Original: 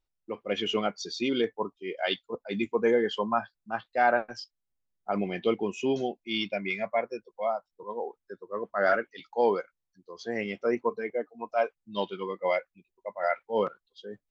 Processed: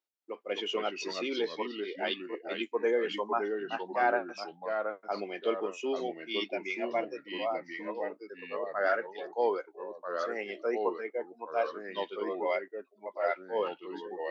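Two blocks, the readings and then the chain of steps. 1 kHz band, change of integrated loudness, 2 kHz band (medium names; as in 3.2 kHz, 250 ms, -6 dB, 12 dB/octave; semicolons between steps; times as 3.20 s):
-3.5 dB, -3.5 dB, -3.0 dB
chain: high-pass 300 Hz 24 dB/octave; ever faster or slower copies 219 ms, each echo -2 st, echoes 2, each echo -6 dB; trim -4 dB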